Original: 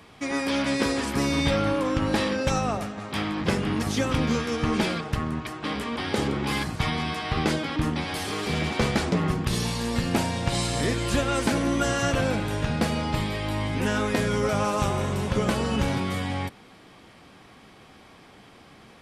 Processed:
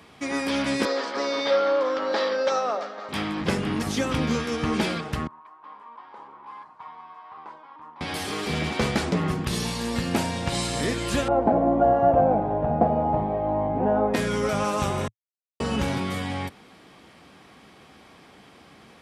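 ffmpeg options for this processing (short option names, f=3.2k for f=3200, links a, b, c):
-filter_complex "[0:a]asettb=1/sr,asplit=3[a][b][c];[a]atrim=end=0.854[d];[b]atrim=start=0.85:end=3.09,asetpts=PTS-STARTPTS,afade=t=in:d=0.004:c=qsin,afade=t=out:st=2.236:d=0.004:c=qsin,highpass=f=320:w=0.5412,highpass=f=320:w=1.3066,equalizer=f=330:t=q:w=4:g=-7,equalizer=f=560:t=q:w=4:g=7,equalizer=f=1.3k:t=q:w=4:g=4,equalizer=f=2.6k:t=q:w=4:g=-7,equalizer=f=4.6k:t=q:w=4:g=3,lowpass=f=5.4k:w=0.5412,lowpass=f=5.4k:w=1.3066[e];[c]atrim=start=3.086[f];[d][e]acrossfade=d=0.004:c1=hsin:c2=qsin[g];[g][f]acrossfade=d=0.004:c1=qsin:c2=hsin,asettb=1/sr,asplit=3[h][i][j];[h]atrim=end=5.274[k];[i]atrim=start=5.27:end=8.01,asetpts=PTS-STARTPTS,afade=t=in:d=0.004:c=qsin,afade=t=out:st=2.736:d=0.004:c=qsin,bandpass=f=990:t=q:w=9.9[l];[j]atrim=start=8.006[m];[k][l]acrossfade=d=0.004:c1=hsin:c2=qsin[n];[n][m]acrossfade=d=0.004:c1=qsin:c2=hsin,asettb=1/sr,asplit=3[o][p][q];[o]atrim=end=11.284[r];[p]atrim=start=11.28:end=14.14,asetpts=PTS-STARTPTS,afade=t=in:d=0.004:c=qsin,afade=t=out:st=2.856:d=0.004:c=qsin,lowpass=f=730:t=q:w=6.4[s];[q]atrim=start=14.136[t];[r][s]acrossfade=d=0.004:c1=hsin:c2=qsin[u];[u][t]acrossfade=d=0.004:c1=qsin:c2=hsin,asplit=3[v][w][x];[v]atrim=end=15.08,asetpts=PTS-STARTPTS,afade=t=out:st=15.076:d=0.004:c=hsin[y];[w]atrim=start=15.08:end=15.6,asetpts=PTS-STARTPTS,volume=0[z];[x]atrim=start=15.6,asetpts=PTS-STARTPTS,afade=t=in:d=0.004:c=hsin[aa];[y][z][aa]concat=n=3:v=0:a=1,highpass=58,equalizer=f=110:t=o:w=0.32:g=-6.5"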